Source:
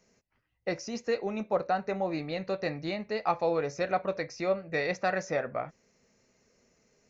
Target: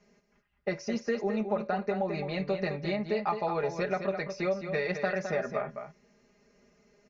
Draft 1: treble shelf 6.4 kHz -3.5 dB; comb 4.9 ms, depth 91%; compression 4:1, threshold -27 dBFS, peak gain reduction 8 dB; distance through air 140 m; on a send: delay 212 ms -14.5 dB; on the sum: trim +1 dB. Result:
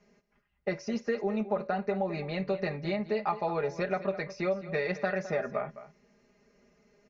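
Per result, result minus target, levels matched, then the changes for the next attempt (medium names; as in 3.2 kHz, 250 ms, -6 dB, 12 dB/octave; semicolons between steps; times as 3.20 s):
echo-to-direct -6.5 dB; 8 kHz band -2.5 dB
change: delay 212 ms -8 dB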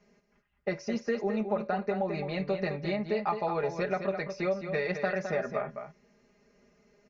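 8 kHz band -2.5 dB
change: treble shelf 6.4 kHz +2.5 dB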